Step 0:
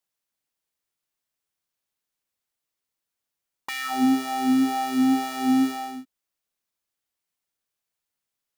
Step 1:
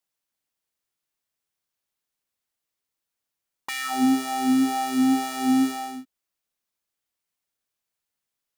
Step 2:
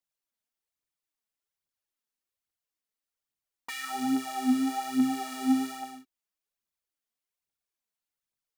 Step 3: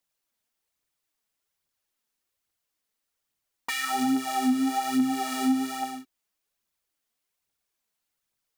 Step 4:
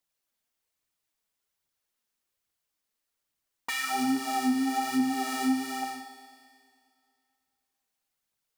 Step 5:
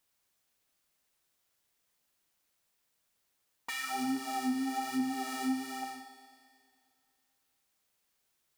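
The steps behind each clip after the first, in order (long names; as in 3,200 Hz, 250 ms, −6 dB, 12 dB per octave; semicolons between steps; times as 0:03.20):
dynamic equaliser 8,600 Hz, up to +5 dB, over −52 dBFS, Q 0.95
phase shifter 1.2 Hz, delay 4.9 ms, feedback 55%; level −8.5 dB
downward compressor 2.5 to 1, threshold −32 dBFS, peak gain reduction 9 dB; level +8 dB
four-comb reverb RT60 2.2 s, combs from 29 ms, DRR 7.5 dB; level −2 dB
bit-depth reduction 12 bits, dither triangular; level −6 dB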